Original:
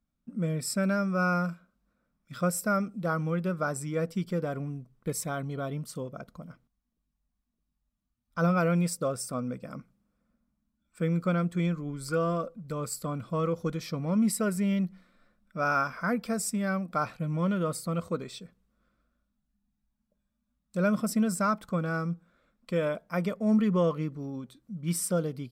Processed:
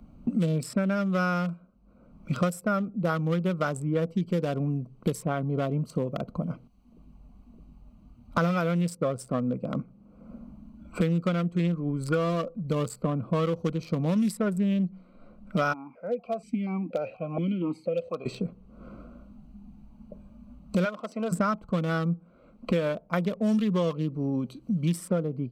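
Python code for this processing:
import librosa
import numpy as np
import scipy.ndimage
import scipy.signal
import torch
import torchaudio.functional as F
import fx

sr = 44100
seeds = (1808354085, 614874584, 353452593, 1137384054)

y = fx.vowel_held(x, sr, hz=4.2, at=(15.72, 18.25), fade=0.02)
y = fx.bandpass_edges(y, sr, low_hz=650.0, high_hz=5500.0, at=(20.84, 21.31), fade=0.02)
y = fx.wiener(y, sr, points=25)
y = fx.peak_eq(y, sr, hz=3300.0, db=4.0, octaves=0.56)
y = fx.band_squash(y, sr, depth_pct=100)
y = y * 10.0 ** (2.5 / 20.0)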